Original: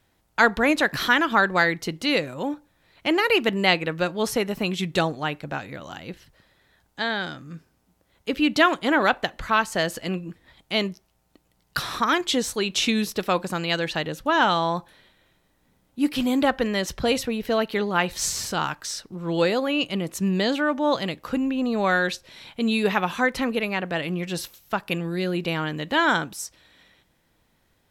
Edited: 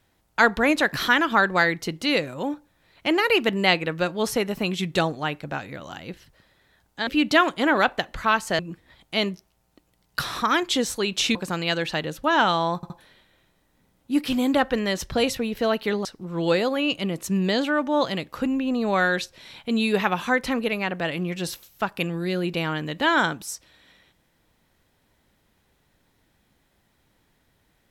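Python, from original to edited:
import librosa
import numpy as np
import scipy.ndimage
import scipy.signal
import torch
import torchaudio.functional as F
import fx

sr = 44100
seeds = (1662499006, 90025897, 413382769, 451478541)

y = fx.edit(x, sr, fx.cut(start_s=7.07, length_s=1.25),
    fx.cut(start_s=9.84, length_s=0.33),
    fx.cut(start_s=12.93, length_s=0.44),
    fx.stutter(start_s=14.78, slice_s=0.07, count=3),
    fx.cut(start_s=17.93, length_s=1.03), tone=tone)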